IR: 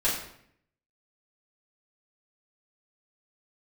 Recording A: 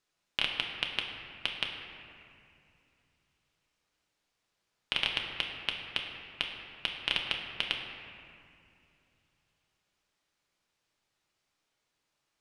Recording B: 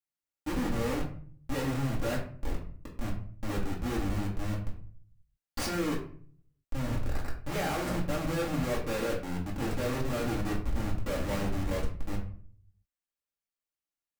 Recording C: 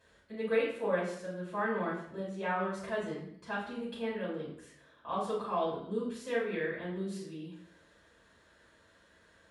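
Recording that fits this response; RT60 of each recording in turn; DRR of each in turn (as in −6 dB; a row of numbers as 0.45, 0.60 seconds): C; 2.6, 0.50, 0.65 seconds; 0.5, −6.0, −8.5 decibels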